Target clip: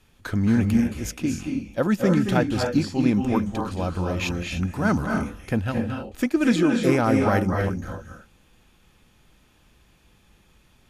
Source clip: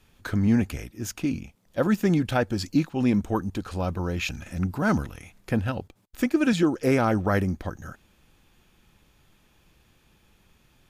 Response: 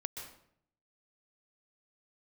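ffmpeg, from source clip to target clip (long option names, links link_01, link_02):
-filter_complex "[1:a]atrim=start_sample=2205,afade=type=out:start_time=0.22:duration=0.01,atrim=end_sample=10143,asetrate=24255,aresample=44100[link_01];[0:a][link_01]afir=irnorm=-1:irlink=0"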